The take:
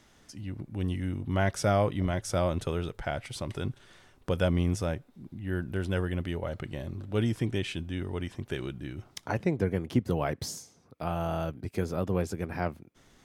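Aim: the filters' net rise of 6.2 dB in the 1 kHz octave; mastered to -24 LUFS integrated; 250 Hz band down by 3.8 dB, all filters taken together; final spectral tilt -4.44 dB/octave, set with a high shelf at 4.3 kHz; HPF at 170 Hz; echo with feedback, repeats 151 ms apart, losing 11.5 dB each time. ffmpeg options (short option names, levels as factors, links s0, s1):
-af "highpass=170,equalizer=f=250:t=o:g=-4,equalizer=f=1000:t=o:g=9,highshelf=f=4300:g=5.5,aecho=1:1:151|302|453:0.266|0.0718|0.0194,volume=2.37"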